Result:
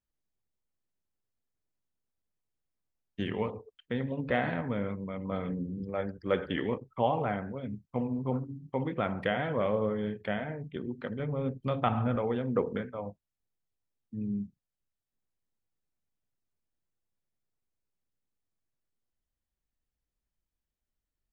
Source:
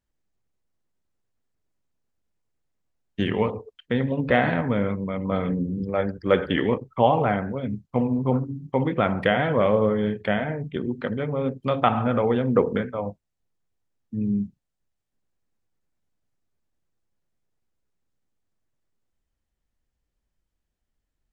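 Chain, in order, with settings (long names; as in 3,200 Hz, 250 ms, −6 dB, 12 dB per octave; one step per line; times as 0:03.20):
0:11.19–0:12.16: low-shelf EQ 130 Hz +11.5 dB
level −9 dB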